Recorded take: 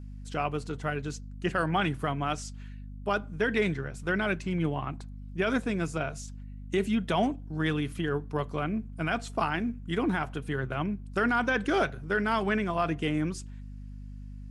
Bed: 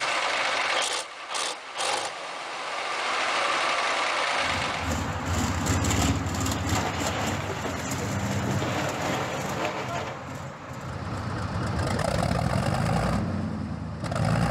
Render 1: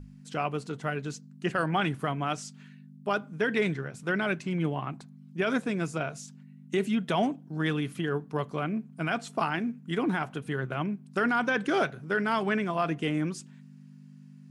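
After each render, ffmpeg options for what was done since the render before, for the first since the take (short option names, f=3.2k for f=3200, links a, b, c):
-af "bandreject=f=50:t=h:w=6,bandreject=f=100:t=h:w=6"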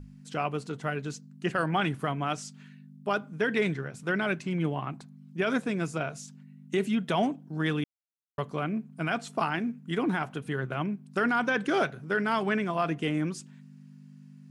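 -filter_complex "[0:a]asplit=3[a][b][c];[a]atrim=end=7.84,asetpts=PTS-STARTPTS,afade=t=out:st=7.836:d=0.004:c=hsin[d];[b]atrim=start=7.84:end=8.38,asetpts=PTS-STARTPTS,volume=0[e];[c]atrim=start=8.38,asetpts=PTS-STARTPTS,afade=t=in:d=0.004:c=hsin[f];[d][e][f]concat=n=3:v=0:a=1"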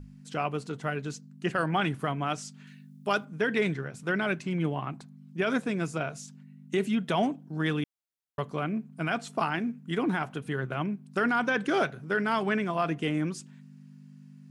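-filter_complex "[0:a]asettb=1/sr,asplit=3[a][b][c];[a]atrim=end=2.674[d];[b]atrim=start=2.67:end=3.25,asetpts=PTS-STARTPTS,afade=t=in:d=0.004:c=qsin,afade=t=out:st=0.576:d=0.004:c=qsin,highshelf=f=2.6k:g=9[e];[c]atrim=start=3.246[f];[d][e]acrossfade=d=0.004:c1=hsin:c2=qsin[g];[g][f]acrossfade=d=0.004:c1=qsin:c2=hsin"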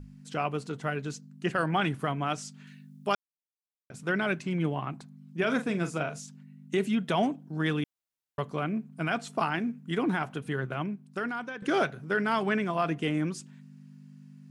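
-filter_complex "[0:a]asettb=1/sr,asplit=3[a][b][c];[a]atrim=end=5.374[d];[b]atrim=start=5.37:end=6.2,asetpts=PTS-STARTPTS,afade=t=in:d=0.004:c=qsin,afade=t=out:st=0.826:d=0.004:c=qsin,asplit=2[e][f];[f]adelay=40,volume=-10.5dB[g];[e][g]amix=inputs=2:normalize=0,atrim=end_sample=36603[h];[c]atrim=start=6.196[i];[d][h]acrossfade=d=0.004:c1=hsin:c2=qsin[j];[j][i]acrossfade=d=0.004:c1=qsin:c2=hsin,asplit=4[k][l][m][n];[k]atrim=end=3.15,asetpts=PTS-STARTPTS,afade=t=out:st=3.146:d=0.004:c=hsin[o];[l]atrim=start=3.15:end=3.9,asetpts=PTS-STARTPTS,volume=0[p];[m]atrim=start=3.9:end=11.62,asetpts=PTS-STARTPTS,afade=t=in:d=0.004:c=hsin,afade=t=out:st=6.69:d=1.03:silence=0.177828[q];[n]atrim=start=11.62,asetpts=PTS-STARTPTS,afade=t=in:d=0.004:c=hsin:silence=0.177828[r];[o][p][q][r]concat=n=4:v=0:a=1"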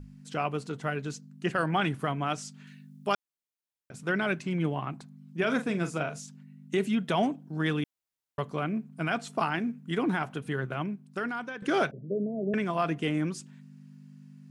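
-filter_complex "[0:a]asettb=1/sr,asplit=3[a][b][c];[a]atrim=end=11.914[d];[b]atrim=start=11.91:end=12.54,asetpts=PTS-STARTPTS,afade=t=in:d=0.004:c=qsin,afade=t=out:st=0.626:d=0.004:c=qsin,asuperpass=centerf=270:order=20:qfactor=0.52[e];[c]atrim=start=12.536[f];[d][e]acrossfade=d=0.004:c1=hsin:c2=qsin[g];[g][f]acrossfade=d=0.004:c1=qsin:c2=hsin"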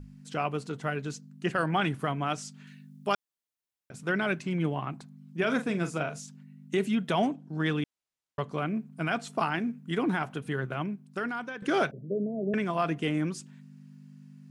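-filter_complex "[0:a]asettb=1/sr,asplit=3[a][b][c];[a]atrim=end=7.294[d];[b]atrim=start=7.29:end=8.52,asetpts=PTS-STARTPTS,afade=t=in:d=0.004:c=qsin,afade=t=out:st=1.226:d=0.004:c=qsin,lowpass=8.5k[e];[c]atrim=start=8.516[f];[d][e]acrossfade=d=0.004:c1=hsin:c2=qsin[g];[g][f]acrossfade=d=0.004:c1=qsin:c2=hsin"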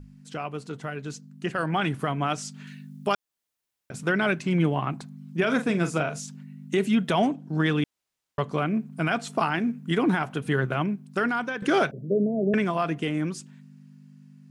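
-af "alimiter=limit=-20.5dB:level=0:latency=1:release=304,dynaudnorm=f=160:g=21:m=7.5dB"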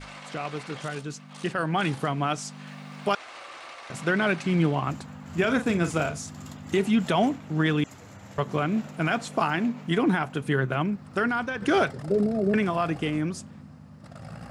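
-filter_complex "[1:a]volume=-17.5dB[a];[0:a][a]amix=inputs=2:normalize=0"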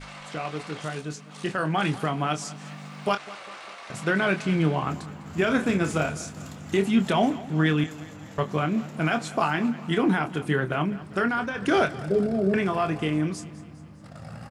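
-filter_complex "[0:a]asplit=2[a][b];[b]adelay=26,volume=-8.5dB[c];[a][c]amix=inputs=2:normalize=0,aecho=1:1:202|404|606|808|1010:0.126|0.0692|0.0381|0.0209|0.0115"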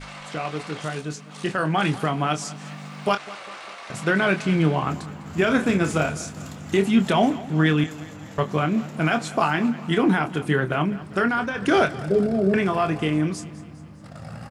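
-af "volume=3dB"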